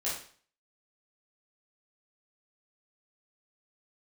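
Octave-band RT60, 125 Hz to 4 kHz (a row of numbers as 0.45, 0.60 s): 0.50, 0.45, 0.45, 0.45, 0.45, 0.45 s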